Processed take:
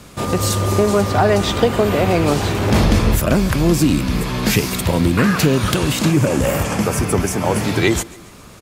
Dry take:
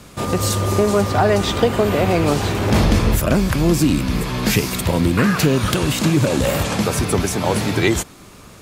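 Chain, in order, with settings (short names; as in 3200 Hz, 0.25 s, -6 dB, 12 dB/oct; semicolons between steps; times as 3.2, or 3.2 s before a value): 6.11–7.64 bell 3900 Hz -11 dB 0.43 oct; on a send: feedback echo 0.14 s, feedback 47%, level -22 dB; on the sum: gain +1 dB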